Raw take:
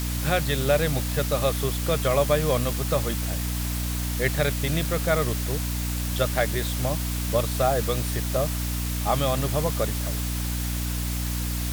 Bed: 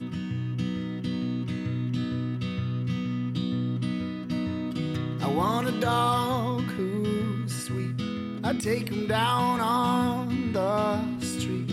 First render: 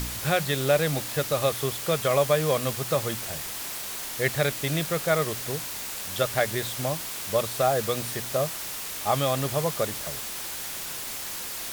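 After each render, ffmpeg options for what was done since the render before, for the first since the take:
-af "bandreject=f=60:t=h:w=4,bandreject=f=120:t=h:w=4,bandreject=f=180:t=h:w=4,bandreject=f=240:t=h:w=4,bandreject=f=300:t=h:w=4"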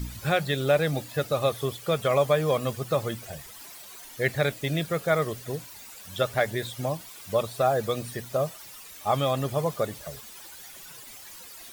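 -af "afftdn=nr=14:nf=-35"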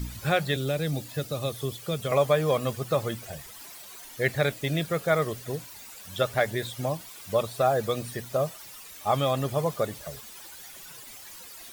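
-filter_complex "[0:a]asettb=1/sr,asplit=3[a][b][c];[a]atrim=end=0.564[d];[b]atrim=start=0.56:end=2.12,asetpts=PTS-STARTPTS,afade=t=in:d=0.004:c=qsin,afade=t=out:st=1.556:d=0.004:c=qsin,acrossover=split=380|3000[e][f][g];[f]acompressor=threshold=-52dB:ratio=1.5:attack=3.2:release=140:knee=2.83:detection=peak[h];[e][h][g]amix=inputs=3:normalize=0[i];[c]atrim=start=2.116[j];[d][i]acrossfade=d=0.004:c1=hsin:c2=qsin[k];[k][j]acrossfade=d=0.004:c1=qsin:c2=hsin"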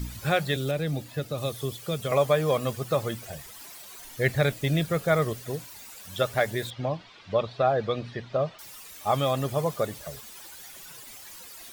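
-filter_complex "[0:a]asettb=1/sr,asplit=3[a][b][c];[a]atrim=end=0.714[d];[b]atrim=start=0.71:end=1.38,asetpts=PTS-STARTPTS,afade=t=in:d=0.004:c=qsin,afade=t=out:st=0.666:d=0.004:c=qsin,acrossover=split=3600[e][f];[f]acompressor=threshold=-47dB:ratio=4:attack=1:release=60[g];[e][g]amix=inputs=2:normalize=0[h];[c]atrim=start=1.376[i];[d][h]acrossfade=d=0.004:c1=hsin:c2=qsin[j];[j][i]acrossfade=d=0.004:c1=qsin:c2=hsin,asettb=1/sr,asplit=3[k][l][m];[k]atrim=end=3.994[n];[l]atrim=start=3.99:end=5.33,asetpts=PTS-STARTPTS,afade=t=in:d=0.004:c=qsin,afade=t=out:st=1.336:d=0.004:c=qsin,lowshelf=f=130:g=9[o];[m]atrim=start=5.326[p];[n][o]acrossfade=d=0.004:c1=hsin:c2=qsin[q];[q][p]acrossfade=d=0.004:c1=qsin:c2=hsin,asettb=1/sr,asplit=3[r][s][t];[r]atrim=end=6.704[u];[s]atrim=start=6.7:end=8.59,asetpts=PTS-STARTPTS,afade=t=in:d=0.004:c=qsin,afade=t=out:st=1.886:d=0.004:c=qsin,lowpass=f=4.2k:w=0.5412,lowpass=f=4.2k:w=1.3066[v];[t]atrim=start=8.586[w];[u][v]acrossfade=d=0.004:c1=hsin:c2=qsin[x];[x][w]acrossfade=d=0.004:c1=qsin:c2=hsin"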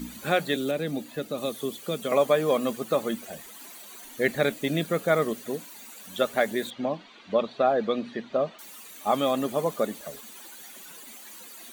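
-af "lowshelf=f=160:t=q:w=3:g=-11.5,bandreject=f=5.2k:w=6.4"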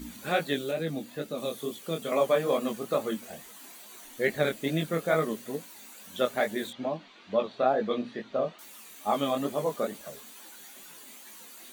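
-af "flanger=delay=18.5:depth=6.3:speed=2.3"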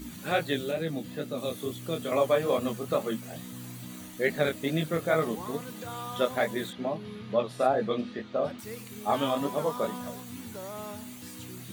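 -filter_complex "[1:a]volume=-14.5dB[a];[0:a][a]amix=inputs=2:normalize=0"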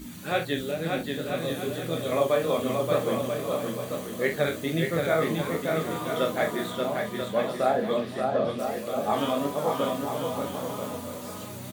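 -filter_complex "[0:a]asplit=2[a][b];[b]adelay=42,volume=-7.5dB[c];[a][c]amix=inputs=2:normalize=0,aecho=1:1:580|986|1270|1469|1608:0.631|0.398|0.251|0.158|0.1"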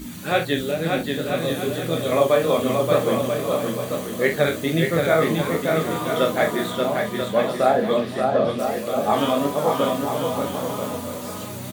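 -af "volume=6dB"

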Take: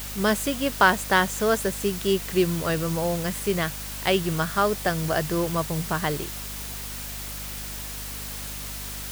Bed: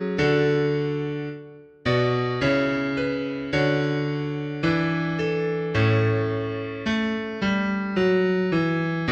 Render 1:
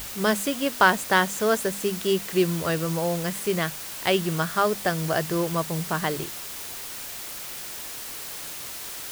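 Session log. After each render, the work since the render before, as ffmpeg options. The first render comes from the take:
-af "bandreject=f=50:t=h:w=6,bandreject=f=100:t=h:w=6,bandreject=f=150:t=h:w=6,bandreject=f=200:t=h:w=6,bandreject=f=250:t=h:w=6"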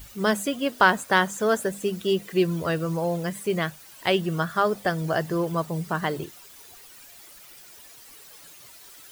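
-af "afftdn=nr=14:nf=-36"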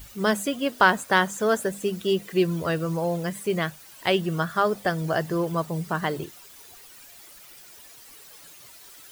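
-af anull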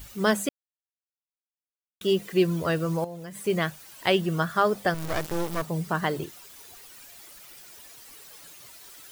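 -filter_complex "[0:a]asettb=1/sr,asplit=3[a][b][c];[a]atrim=end=3.044[d];[b]atrim=start=3.04:end=3.46,asetpts=PTS-STARTPTS,afade=t=in:d=0.004:c=qsin,afade=t=out:st=0.416:d=0.004:c=qsin,acompressor=threshold=-35dB:ratio=12:attack=3.2:release=140:knee=1:detection=peak[e];[c]atrim=start=3.456[f];[d][e]acrossfade=d=0.004:c1=hsin:c2=qsin[g];[g][f]acrossfade=d=0.004:c1=qsin:c2=hsin,asettb=1/sr,asplit=3[h][i][j];[h]atrim=end=4.944[k];[i]atrim=start=4.94:end=5.62,asetpts=PTS-STARTPTS,afade=t=in:d=0.004:c=qsin,afade=t=out:st=0.676:d=0.004:c=qsin,acrusher=bits=3:dc=4:mix=0:aa=0.000001[l];[j]atrim=start=5.616[m];[k][l]acrossfade=d=0.004:c1=hsin:c2=qsin[n];[n][m]acrossfade=d=0.004:c1=qsin:c2=hsin,asplit=3[o][p][q];[o]atrim=end=0.49,asetpts=PTS-STARTPTS,afade=t=out:st=0.486:d=0.004:c=hsin[r];[p]atrim=start=0.49:end=2.01,asetpts=PTS-STARTPTS,volume=0[s];[q]atrim=start=2.01,asetpts=PTS-STARTPTS,afade=t=in:d=0.004:c=hsin[t];[r][s][t]concat=n=3:v=0:a=1"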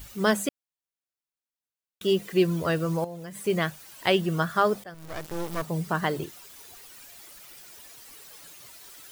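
-filter_complex "[0:a]asplit=2[a][b];[a]atrim=end=4.84,asetpts=PTS-STARTPTS,afade=t=out:st=4.836:d=0.004:c=hsin:silence=0.0794328[c];[b]atrim=start=4.84,asetpts=PTS-STARTPTS,afade=t=in:d=0.89:silence=0.0794328[d];[c][d]concat=n=2:v=0:a=1"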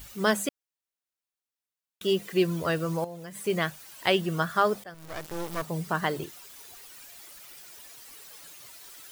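-af "lowshelf=f=460:g=-3.5"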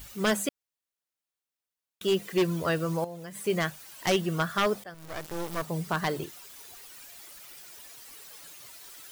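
-af "aeval=exprs='0.133*(abs(mod(val(0)/0.133+3,4)-2)-1)':c=same"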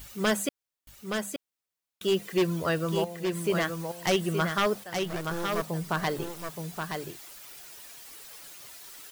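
-af "aecho=1:1:872:0.531"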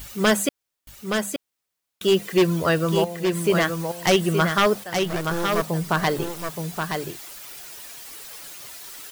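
-af "volume=7dB"

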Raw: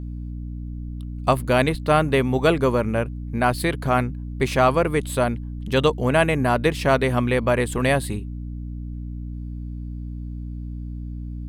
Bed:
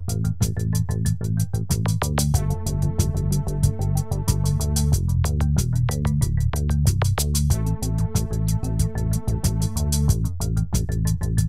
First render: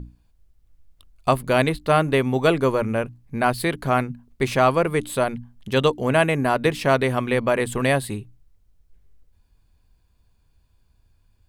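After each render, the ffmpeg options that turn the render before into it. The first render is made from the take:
-af "bandreject=f=60:t=h:w=6,bandreject=f=120:t=h:w=6,bandreject=f=180:t=h:w=6,bandreject=f=240:t=h:w=6,bandreject=f=300:t=h:w=6"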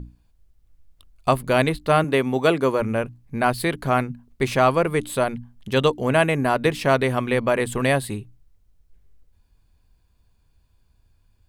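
-filter_complex "[0:a]asettb=1/sr,asplit=3[a][b][c];[a]atrim=end=2.044[d];[b]atrim=start=2.04:end=2.8,asetpts=PTS-STARTPTS,afade=t=in:d=0.004:c=qsin,afade=t=out:st=0.756:d=0.004:c=qsin,highpass=150[e];[c]atrim=start=2.796[f];[d][e]acrossfade=d=0.004:c1=hsin:c2=qsin[g];[g][f]acrossfade=d=0.004:c1=qsin:c2=hsin"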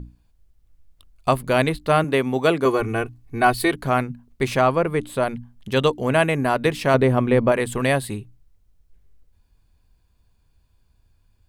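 -filter_complex "[0:a]asettb=1/sr,asplit=3[a][b][c];[a]atrim=end=2.654[d];[b]atrim=start=2.65:end=3.72,asetpts=PTS-STARTPTS,afade=t=in:d=0.004:c=qsin,afade=t=out:st=1.066:d=0.004:c=qsin,aecho=1:1:2.7:0.9,atrim=end_sample=47187[e];[c]atrim=start=3.716[f];[d][e]acrossfade=d=0.004:c1=hsin:c2=qsin[g];[g][f]acrossfade=d=0.004:c1=qsin:c2=hsin,asettb=1/sr,asplit=3[h][i][j];[h]atrim=end=4.614[k];[i]atrim=start=4.61:end=5.23,asetpts=PTS-STARTPTS,afade=t=in:d=0.004:c=qsin,afade=t=out:st=0.616:d=0.004:c=qsin,highshelf=f=2.9k:g=-7.5[l];[j]atrim=start=5.226[m];[k][l]acrossfade=d=0.004:c1=hsin:c2=qsin[n];[n][m]acrossfade=d=0.004:c1=qsin:c2=hsin,asettb=1/sr,asplit=3[o][p][q];[o]atrim=end=6.944[r];[p]atrim=start=6.94:end=7.52,asetpts=PTS-STARTPTS,afade=t=in:d=0.004:c=qsin,afade=t=out:st=0.576:d=0.004:c=qsin,tiltshelf=f=1.2k:g=6[s];[q]atrim=start=7.516[t];[r][s]acrossfade=d=0.004:c1=hsin:c2=qsin[u];[u][t]acrossfade=d=0.004:c1=qsin:c2=hsin"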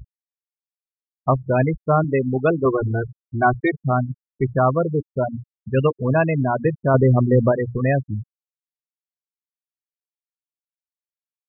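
-af "equalizer=f=110:w=1.2:g=7,afftfilt=real='re*gte(hypot(re,im),0.251)':imag='im*gte(hypot(re,im),0.251)':win_size=1024:overlap=0.75"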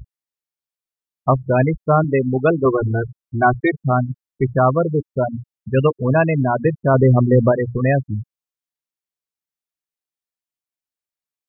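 -af "volume=2.5dB,alimiter=limit=-3dB:level=0:latency=1"

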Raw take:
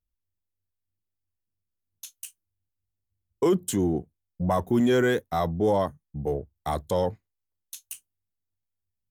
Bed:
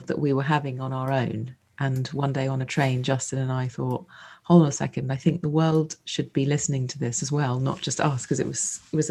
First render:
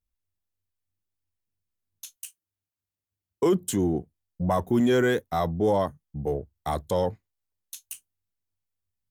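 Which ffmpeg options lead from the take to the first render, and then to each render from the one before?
-filter_complex "[0:a]asettb=1/sr,asplit=3[a][b][c];[a]atrim=end=2.164[d];[b]atrim=start=2.16:end=3.43,asetpts=PTS-STARTPTS,afade=t=in:d=0.004:c=qsin,afade=t=out:st=1.266:d=0.004:c=qsin,highpass=f=230:p=1[e];[c]atrim=start=3.426[f];[d][e]acrossfade=d=0.004:c1=hsin:c2=qsin[g];[g][f]acrossfade=d=0.004:c1=qsin:c2=hsin"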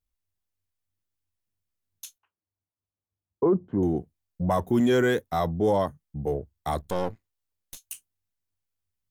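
-filter_complex "[0:a]asettb=1/sr,asplit=3[a][b][c];[a]atrim=end=2.184[d];[b]atrim=start=2.18:end=3.83,asetpts=PTS-STARTPTS,afade=t=in:d=0.004:c=qsin,afade=t=out:st=1.646:d=0.004:c=qsin,lowpass=f=1.2k:w=0.5412,lowpass=f=1.2k:w=1.3066[e];[c]atrim=start=3.826[f];[d][e]acrossfade=d=0.004:c1=hsin:c2=qsin[g];[g][f]acrossfade=d=0.004:c1=qsin:c2=hsin,asettb=1/sr,asplit=3[h][i][j];[h]atrim=end=6.814[k];[i]atrim=start=6.81:end=7.77,asetpts=PTS-STARTPTS,afade=t=in:d=0.004:c=qsin,afade=t=out:st=0.956:d=0.004:c=qsin,aeval=exprs='if(lt(val(0),0),0.251*val(0),val(0))':c=same[l];[j]atrim=start=7.766[m];[k][l]acrossfade=d=0.004:c1=hsin:c2=qsin[n];[n][m]acrossfade=d=0.004:c1=qsin:c2=hsin"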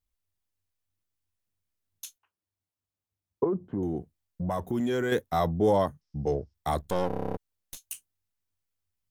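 -filter_complex "[0:a]asettb=1/sr,asplit=3[a][b][c];[a]atrim=end=3.444[d];[b]atrim=start=3.44:end=5.12,asetpts=PTS-STARTPTS,afade=t=in:d=0.004:c=qsin,afade=t=out:st=1.676:d=0.004:c=qsin,acompressor=threshold=-30dB:ratio=2:attack=3.2:release=140:knee=1:detection=peak[e];[c]atrim=start=5.116[f];[d][e]acrossfade=d=0.004:c1=hsin:c2=qsin[g];[g][f]acrossfade=d=0.004:c1=qsin:c2=hsin,asettb=1/sr,asplit=3[h][i][j];[h]atrim=end=6.014[k];[i]atrim=start=6.01:end=6.54,asetpts=PTS-STARTPTS,afade=t=in:d=0.004:c=qsin,afade=t=out:st=0.526:d=0.004:c=qsin,lowpass=f=5.3k:t=q:w=8.5[l];[j]atrim=start=6.536[m];[k][l]acrossfade=d=0.004:c1=hsin:c2=qsin[n];[n][m]acrossfade=d=0.004:c1=qsin:c2=hsin,asplit=11[o][p][q][r][s][t][u][v][w][x][y];[o]atrim=end=7.102[z];[p]atrim=start=7.068:end=7.102[aa];[q]atrim=start=7.068:end=7.102[ab];[r]atrim=start=7.068:end=7.102[ac];[s]atrim=start=7.068:end=7.102[ad];[t]atrim=start=7.068:end=7.102[ae];[u]atrim=start=7.068:end=7.102[af];[v]atrim=start=7.068:end=7.102[ag];[w]atrim=start=7.068:end=7.102[ah];[x]atrim=start=7.068:end=7.102[ai];[y]atrim=start=7.368[aj];[z][aa]acrossfade=d=0.004:c1=hsin:c2=hsin[ak];[ak][ab]acrossfade=d=0.004:c1=hsin:c2=hsin[al];[al][ac]acrossfade=d=0.004:c1=hsin:c2=hsin[am];[am][ad]acrossfade=d=0.004:c1=hsin:c2=hsin[an];[an][ae]acrossfade=d=0.004:c1=hsin:c2=hsin[ao];[ao][af]acrossfade=d=0.004:c1=hsin:c2=hsin[ap];[ap][ag]acrossfade=d=0.004:c1=hsin:c2=hsin[aq];[aq][ah]acrossfade=d=0.004:c1=hsin:c2=hsin[ar];[ar][ai]acrossfade=d=0.004:c1=hsin:c2=hsin[as];[as][aj]acrossfade=d=0.004:c1=hsin:c2=hsin"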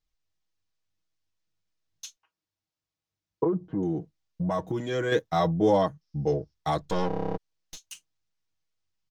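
-af "highshelf=f=8k:t=q:w=1.5:g=-13,aecho=1:1:6.3:0.7"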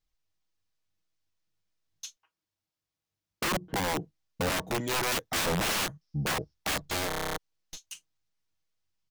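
-af "aeval=exprs='(mod(15.8*val(0)+1,2)-1)/15.8':c=same"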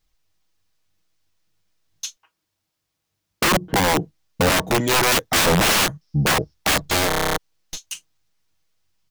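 -af "volume=11.5dB"

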